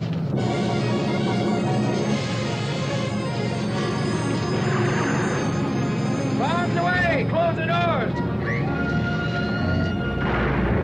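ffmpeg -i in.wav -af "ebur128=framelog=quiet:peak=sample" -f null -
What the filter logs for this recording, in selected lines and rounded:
Integrated loudness:
  I:         -23.1 LUFS
  Threshold: -33.1 LUFS
Loudness range:
  LRA:         1.9 LU
  Threshold: -43.0 LUFS
  LRA low:   -24.0 LUFS
  LRA high:  -22.1 LUFS
Sample peak:
  Peak:      -10.1 dBFS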